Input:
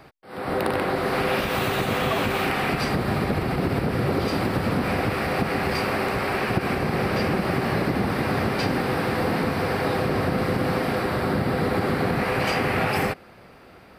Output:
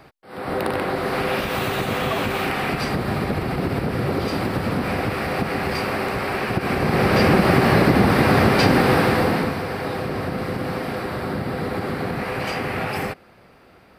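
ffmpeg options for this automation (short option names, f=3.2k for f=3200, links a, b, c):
-af "volume=8dB,afade=t=in:st=6.58:d=0.72:silence=0.421697,afade=t=out:st=8.93:d=0.7:silence=0.298538"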